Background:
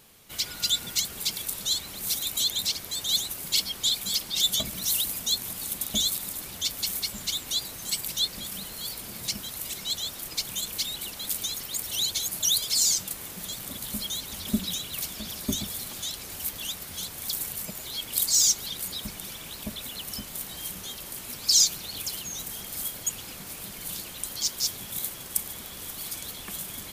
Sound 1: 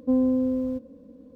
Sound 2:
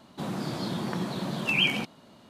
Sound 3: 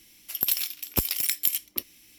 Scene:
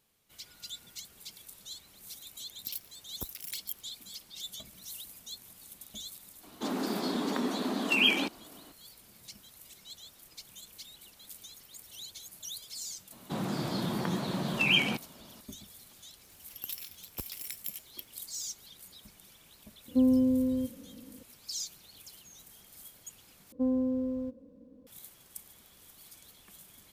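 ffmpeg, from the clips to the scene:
ffmpeg -i bed.wav -i cue0.wav -i cue1.wav -i cue2.wav -filter_complex "[3:a]asplit=2[link_01][link_02];[2:a]asplit=2[link_03][link_04];[1:a]asplit=2[link_05][link_06];[0:a]volume=-18dB[link_07];[link_01]afwtdn=0.0178[link_08];[link_03]afreqshift=65[link_09];[link_05]equalizer=frequency=120:width_type=o:width=2.6:gain=11.5[link_10];[link_07]asplit=2[link_11][link_12];[link_11]atrim=end=23.524[link_13];[link_06]atrim=end=1.35,asetpts=PTS-STARTPTS,volume=-7dB[link_14];[link_12]atrim=start=24.866[link_15];[link_08]atrim=end=2.18,asetpts=PTS-STARTPTS,volume=-14.5dB,afade=type=in:duration=0.004:curve=hsin,afade=type=out:start_time=2.176:duration=0.004:curve=hsin,adelay=2240[link_16];[link_09]atrim=end=2.29,asetpts=PTS-STARTPTS,volume=-0.5dB,afade=type=in:duration=0.004:curve=hsin,afade=type=out:start_time=2.286:duration=0.004:curve=hsin,adelay=6430[link_17];[link_04]atrim=end=2.29,asetpts=PTS-STARTPTS,volume=-1dB,afade=type=in:duration=0.004:curve=hsin,afade=type=out:start_time=2.286:duration=0.004:curve=hsin,adelay=13120[link_18];[link_02]atrim=end=2.18,asetpts=PTS-STARTPTS,volume=-15dB,afade=type=in:duration=0.004:curve=hsin,afade=type=out:start_time=2.176:duration=0.004:curve=hsin,adelay=16210[link_19];[link_10]atrim=end=1.35,asetpts=PTS-STARTPTS,volume=-8.5dB,afade=type=in:duration=0.004:curve=hsin,afade=type=out:start_time=1.346:duration=0.004:curve=hsin,adelay=876708S[link_20];[link_13][link_14]acrossfade=duration=0.004:curve1=hsin:curve2=hsin[link_21];[link_21][link_15]acrossfade=duration=0.004:curve1=hsin:curve2=hsin[link_22];[link_22][link_16][link_17][link_18][link_19][link_20]amix=inputs=6:normalize=0" out.wav

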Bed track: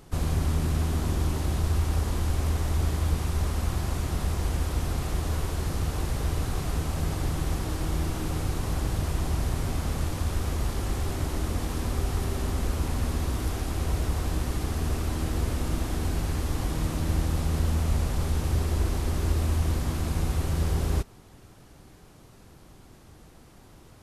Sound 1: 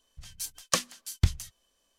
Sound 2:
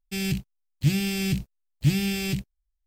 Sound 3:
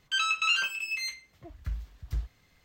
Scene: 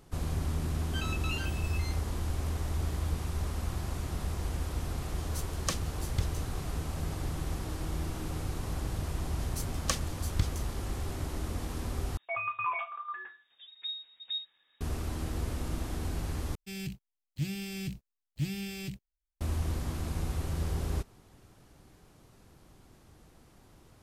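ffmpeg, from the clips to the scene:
ffmpeg -i bed.wav -i cue0.wav -i cue1.wav -i cue2.wav -filter_complex "[3:a]asplit=2[link_01][link_02];[1:a]asplit=2[link_03][link_04];[0:a]volume=-6.5dB[link_05];[link_02]lowpass=frequency=3200:width_type=q:width=0.5098,lowpass=frequency=3200:width_type=q:width=0.6013,lowpass=frequency=3200:width_type=q:width=0.9,lowpass=frequency=3200:width_type=q:width=2.563,afreqshift=-3800[link_06];[link_05]asplit=3[link_07][link_08][link_09];[link_07]atrim=end=12.174[link_10];[link_06]atrim=end=2.64,asetpts=PTS-STARTPTS,volume=-5.5dB[link_11];[link_08]atrim=start=14.806:end=16.554[link_12];[2:a]atrim=end=2.86,asetpts=PTS-STARTPTS,volume=-11.5dB[link_13];[link_09]atrim=start=19.406[link_14];[link_01]atrim=end=2.64,asetpts=PTS-STARTPTS,volume=-12.5dB,afade=type=in:duration=0.004:curve=hsin,afade=type=out:start_time=2.636:duration=0.004:curve=hsin,adelay=820[link_15];[link_03]atrim=end=1.98,asetpts=PTS-STARTPTS,volume=-7.5dB,afade=type=in:duration=0.004:curve=hsin,afade=type=out:start_time=1.976:duration=0.004:curve=hsin,adelay=4950[link_16];[link_04]atrim=end=1.98,asetpts=PTS-STARTPTS,volume=-5.5dB,afade=type=in:duration=0.004:curve=hsin,afade=type=out:start_time=1.976:duration=0.004:curve=hsin,adelay=9160[link_17];[link_10][link_11]acrossfade=duration=0.004:curve1=hsin:curve2=hsin[link_18];[link_18][link_12]acrossfade=duration=0.004:curve1=hsin:curve2=hsin[link_19];[link_19][link_13]acrossfade=duration=0.004:curve1=hsin:curve2=hsin[link_20];[link_20][link_14]acrossfade=duration=0.004:curve1=hsin:curve2=hsin[link_21];[link_21][link_15][link_16][link_17]amix=inputs=4:normalize=0" out.wav

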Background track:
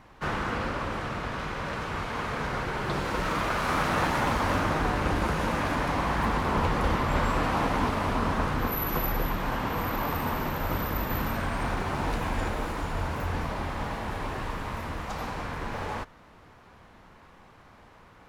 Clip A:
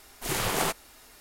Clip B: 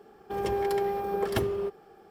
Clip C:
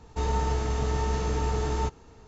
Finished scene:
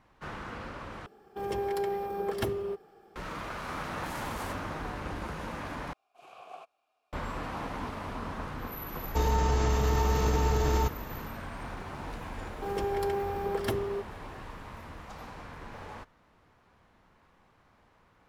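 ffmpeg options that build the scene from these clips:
ffmpeg -i bed.wav -i cue0.wav -i cue1.wav -i cue2.wav -filter_complex "[2:a]asplit=2[link_01][link_02];[1:a]asplit=2[link_03][link_04];[0:a]volume=-10.5dB[link_05];[link_04]asplit=3[link_06][link_07][link_08];[link_06]bandpass=frequency=730:width_type=q:width=8,volume=0dB[link_09];[link_07]bandpass=frequency=1090:width_type=q:width=8,volume=-6dB[link_10];[link_08]bandpass=frequency=2440:width_type=q:width=8,volume=-9dB[link_11];[link_09][link_10][link_11]amix=inputs=3:normalize=0[link_12];[3:a]alimiter=level_in=21.5dB:limit=-1dB:release=50:level=0:latency=1[link_13];[link_05]asplit=3[link_14][link_15][link_16];[link_14]atrim=end=1.064[link_17];[link_01]atrim=end=2.1,asetpts=PTS-STARTPTS,volume=-3.5dB[link_18];[link_15]atrim=start=3.156:end=5.934[link_19];[link_12]atrim=end=1.2,asetpts=PTS-STARTPTS,volume=-10dB[link_20];[link_16]atrim=start=7.126[link_21];[link_03]atrim=end=1.2,asetpts=PTS-STARTPTS,volume=-17.5dB,afade=type=in:duration=0.004:curve=hsin,afade=type=out:start_time=1.196:duration=0.004:curve=hsin,adelay=168021S[link_22];[link_13]atrim=end=2.27,asetpts=PTS-STARTPTS,volume=-17dB,afade=type=in:duration=0.004:curve=hsin,afade=type=out:start_time=2.266:duration=0.004:curve=hsin,adelay=8990[link_23];[link_02]atrim=end=2.1,asetpts=PTS-STARTPTS,volume=-3dB,afade=type=in:duration=0.004:curve=hsin,afade=type=out:start_time=2.096:duration=0.004:curve=hsin,adelay=12320[link_24];[link_17][link_18]acrossfade=duration=0.004:curve1=hsin:curve2=hsin[link_25];[link_25][link_19]acrossfade=duration=0.004:curve1=hsin:curve2=hsin[link_26];[link_26][link_20]acrossfade=duration=0.004:curve1=hsin:curve2=hsin[link_27];[link_27][link_21]acrossfade=duration=0.004:curve1=hsin:curve2=hsin[link_28];[link_28][link_22][link_23][link_24]amix=inputs=4:normalize=0" out.wav

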